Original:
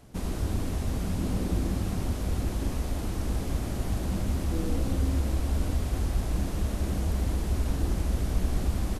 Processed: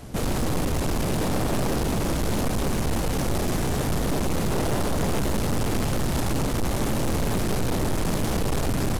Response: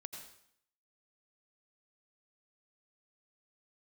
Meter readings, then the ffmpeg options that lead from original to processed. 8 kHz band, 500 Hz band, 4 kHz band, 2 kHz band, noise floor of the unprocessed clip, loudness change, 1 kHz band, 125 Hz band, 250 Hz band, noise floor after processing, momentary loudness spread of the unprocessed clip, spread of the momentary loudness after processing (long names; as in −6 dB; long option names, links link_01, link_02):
+10.0 dB, +10.0 dB, +10.0 dB, +10.5 dB, −33 dBFS, +4.5 dB, +11.0 dB, +2.5 dB, +6.0 dB, −26 dBFS, 3 LU, 1 LU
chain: -af "aeval=exprs='0.2*(cos(1*acos(clip(val(0)/0.2,-1,1)))-cos(1*PI/2))+0.0631*(cos(6*acos(clip(val(0)/0.2,-1,1)))-cos(6*PI/2))+0.0891*(cos(7*acos(clip(val(0)/0.2,-1,1)))-cos(7*PI/2))':channel_layout=same,asoftclip=type=hard:threshold=-26.5dB,volume=6dB"